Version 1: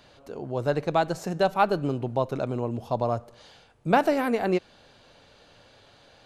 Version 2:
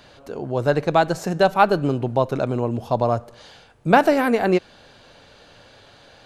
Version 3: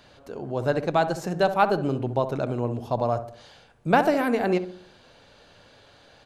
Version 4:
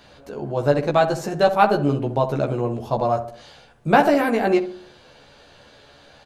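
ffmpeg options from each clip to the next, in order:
-af "equalizer=f=1.6k:w=4.8:g=2.5,volume=6dB"
-filter_complex "[0:a]asplit=2[a][b];[b]adelay=66,lowpass=f=950:p=1,volume=-9dB,asplit=2[c][d];[d]adelay=66,lowpass=f=950:p=1,volume=0.5,asplit=2[e][f];[f]adelay=66,lowpass=f=950:p=1,volume=0.5,asplit=2[g][h];[h]adelay=66,lowpass=f=950:p=1,volume=0.5,asplit=2[i][j];[j]adelay=66,lowpass=f=950:p=1,volume=0.5,asplit=2[k][l];[l]adelay=66,lowpass=f=950:p=1,volume=0.5[m];[a][c][e][g][i][k][m]amix=inputs=7:normalize=0,volume=-5dB"
-filter_complex "[0:a]asplit=2[a][b];[b]adelay=14,volume=-3dB[c];[a][c]amix=inputs=2:normalize=0,volume=2.5dB"

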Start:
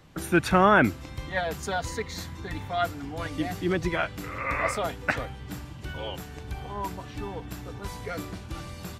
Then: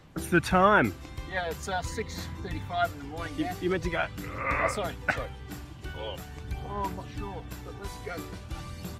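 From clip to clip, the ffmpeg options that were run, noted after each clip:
-af "aphaser=in_gain=1:out_gain=1:delay=2.8:decay=0.32:speed=0.44:type=sinusoidal,volume=-2.5dB"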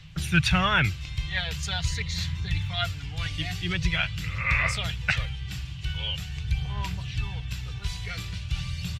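-af "firequalizer=gain_entry='entry(160,0);entry(230,-23);entry(2700,4);entry(11000,-12)':delay=0.05:min_phase=1,volume=9dB"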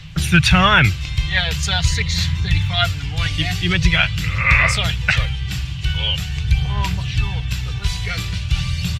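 -af "alimiter=level_in=11.5dB:limit=-1dB:release=50:level=0:latency=1,volume=-1dB"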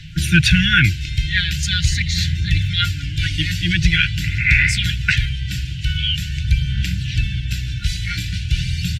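-af "afftfilt=real='re*(1-between(b*sr/4096,350,1400))':imag='im*(1-between(b*sr/4096,350,1400))':win_size=4096:overlap=0.75"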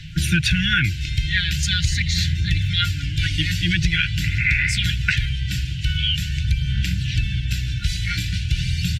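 -af "acompressor=threshold=-15dB:ratio=6"

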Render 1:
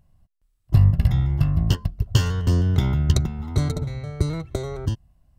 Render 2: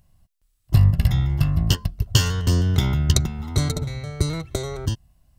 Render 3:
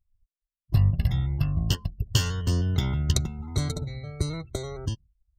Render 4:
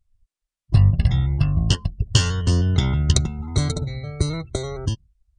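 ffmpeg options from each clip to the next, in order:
-af "highshelf=f=2.2k:g=9.5"
-af "afftdn=nr=30:nf=-40,volume=-5.5dB"
-af "aresample=22050,aresample=44100,volume=6dB"

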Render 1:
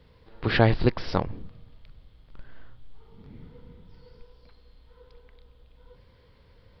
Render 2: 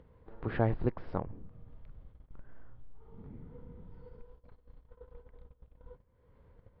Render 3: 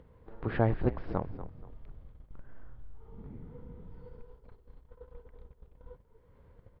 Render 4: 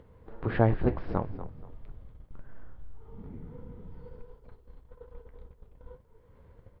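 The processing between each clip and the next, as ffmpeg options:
-af "agate=range=-21dB:threshold=-50dB:ratio=16:detection=peak,lowpass=1.3k,acompressor=mode=upward:threshold=-29dB:ratio=2.5,volume=-9dB"
-filter_complex "[0:a]asplit=4[a][b][c][d];[b]adelay=239,afreqshift=-48,volume=-13dB[e];[c]adelay=478,afreqshift=-96,volume=-23.2dB[f];[d]adelay=717,afreqshift=-144,volume=-33.3dB[g];[a][e][f][g]amix=inputs=4:normalize=0,volume=2dB"
-af "flanger=delay=8.6:depth=4.9:regen=-61:speed=1.6:shape=triangular,volume=7dB"

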